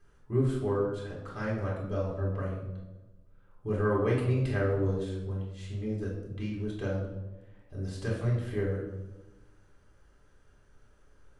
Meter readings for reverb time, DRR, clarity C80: 1.1 s, −4.5 dB, 6.0 dB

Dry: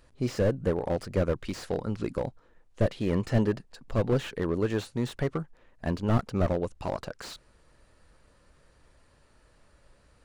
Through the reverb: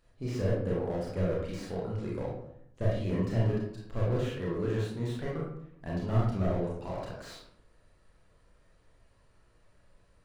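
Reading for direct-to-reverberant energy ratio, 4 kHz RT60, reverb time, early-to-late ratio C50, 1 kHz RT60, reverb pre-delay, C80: −4.5 dB, 0.40 s, 0.75 s, 1.0 dB, 0.70 s, 27 ms, 6.0 dB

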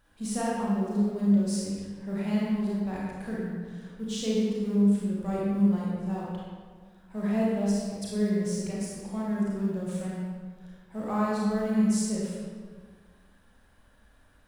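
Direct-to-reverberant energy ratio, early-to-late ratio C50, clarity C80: −6.0 dB, −3.0 dB, −0.5 dB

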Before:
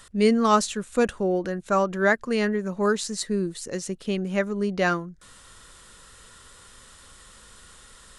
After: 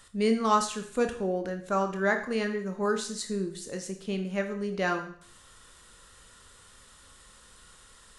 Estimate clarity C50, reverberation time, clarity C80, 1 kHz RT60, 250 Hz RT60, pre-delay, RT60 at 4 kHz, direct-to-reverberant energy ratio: 9.5 dB, 0.55 s, 13.0 dB, 0.55 s, 0.55 s, 20 ms, 0.55 s, 5.0 dB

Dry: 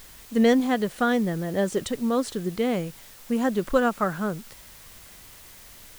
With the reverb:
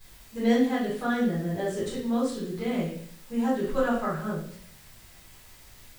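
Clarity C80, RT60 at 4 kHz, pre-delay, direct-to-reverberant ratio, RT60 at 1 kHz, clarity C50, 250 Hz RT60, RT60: 7.0 dB, 0.55 s, 8 ms, −13.0 dB, 0.50 s, 2.0 dB, 0.75 s, 0.55 s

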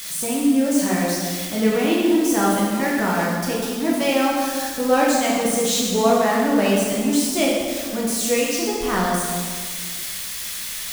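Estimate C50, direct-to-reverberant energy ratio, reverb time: −0.5 dB, −5.0 dB, 1.8 s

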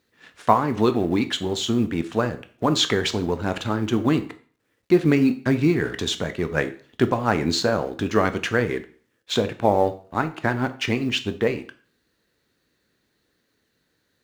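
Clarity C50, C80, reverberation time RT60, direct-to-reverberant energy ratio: 15.0 dB, 19.0 dB, 0.45 s, 9.5 dB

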